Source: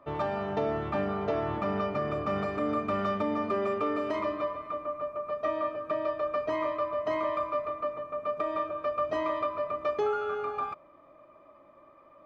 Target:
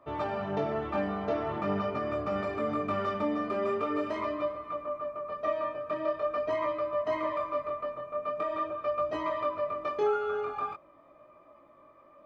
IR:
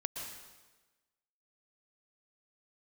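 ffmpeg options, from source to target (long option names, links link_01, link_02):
-af "flanger=delay=16.5:depth=7.7:speed=0.44,volume=2dB"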